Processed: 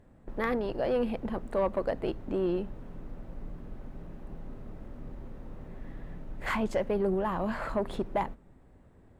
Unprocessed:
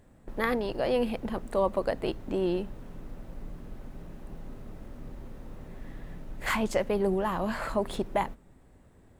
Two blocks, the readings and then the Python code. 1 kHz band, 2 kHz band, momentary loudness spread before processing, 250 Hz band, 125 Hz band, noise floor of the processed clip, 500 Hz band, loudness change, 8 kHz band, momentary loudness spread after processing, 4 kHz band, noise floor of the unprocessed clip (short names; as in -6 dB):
-2.0 dB, -3.5 dB, 19 LU, -1.0 dB, -1.0 dB, -58 dBFS, -1.5 dB, -1.5 dB, n/a, 17 LU, -6.5 dB, -58 dBFS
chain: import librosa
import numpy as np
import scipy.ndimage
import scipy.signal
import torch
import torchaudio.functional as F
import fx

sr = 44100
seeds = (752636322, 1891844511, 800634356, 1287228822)

y = fx.high_shelf(x, sr, hz=3500.0, db=-11.5)
y = 10.0 ** (-18.5 / 20.0) * np.tanh(y / 10.0 ** (-18.5 / 20.0))